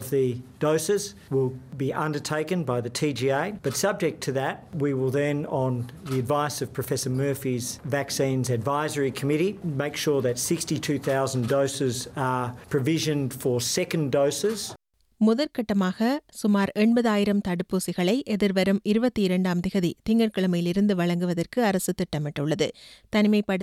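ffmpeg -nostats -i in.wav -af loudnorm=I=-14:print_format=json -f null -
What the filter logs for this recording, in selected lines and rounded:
"input_i" : "-25.4",
"input_tp" : "-10.7",
"input_lra" : "3.2",
"input_thresh" : "-35.5",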